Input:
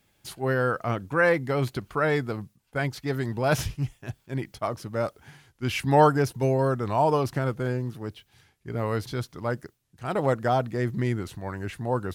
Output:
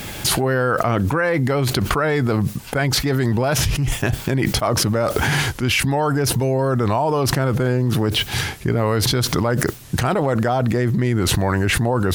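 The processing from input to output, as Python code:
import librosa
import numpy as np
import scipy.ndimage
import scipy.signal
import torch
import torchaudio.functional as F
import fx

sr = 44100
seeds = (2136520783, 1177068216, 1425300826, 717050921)

y = fx.env_flatten(x, sr, amount_pct=100)
y = y * 10.0 ** (-4.0 / 20.0)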